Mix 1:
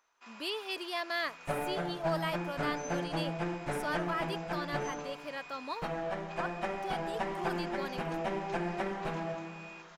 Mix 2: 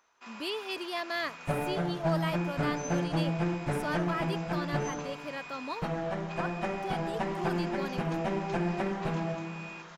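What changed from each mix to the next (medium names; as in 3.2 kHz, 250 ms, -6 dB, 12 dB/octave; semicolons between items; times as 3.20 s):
first sound +4.5 dB; master: add peaking EQ 110 Hz +9 dB 2.9 oct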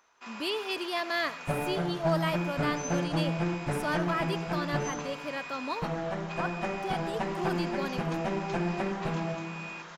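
reverb: on, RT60 0.30 s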